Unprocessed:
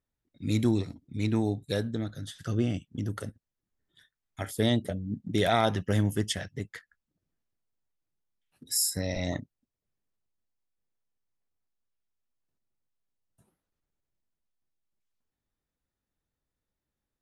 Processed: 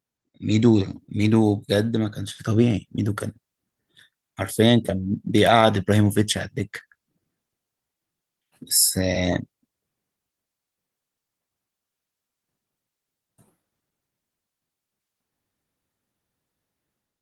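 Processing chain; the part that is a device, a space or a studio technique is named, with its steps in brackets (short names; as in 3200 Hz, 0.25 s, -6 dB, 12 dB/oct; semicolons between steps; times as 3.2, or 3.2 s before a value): video call (HPF 100 Hz 12 dB/oct; AGC gain up to 8 dB; gain +2 dB; Opus 24 kbps 48000 Hz)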